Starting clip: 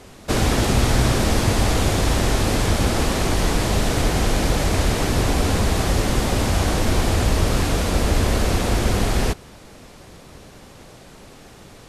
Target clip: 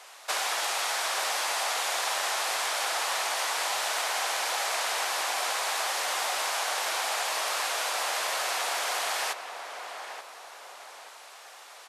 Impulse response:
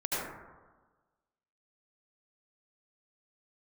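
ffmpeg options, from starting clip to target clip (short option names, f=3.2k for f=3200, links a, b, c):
-filter_complex "[0:a]highpass=f=740:w=0.5412,highpass=f=740:w=1.3066,acompressor=threshold=-26dB:ratio=6,asplit=2[a][b];[b]adelay=881,lowpass=f=1.8k:p=1,volume=-7dB,asplit=2[c][d];[d]adelay=881,lowpass=f=1.8k:p=1,volume=0.44,asplit=2[e][f];[f]adelay=881,lowpass=f=1.8k:p=1,volume=0.44,asplit=2[g][h];[h]adelay=881,lowpass=f=1.8k:p=1,volume=0.44,asplit=2[i][j];[j]adelay=881,lowpass=f=1.8k:p=1,volume=0.44[k];[a][c][e][g][i][k]amix=inputs=6:normalize=0"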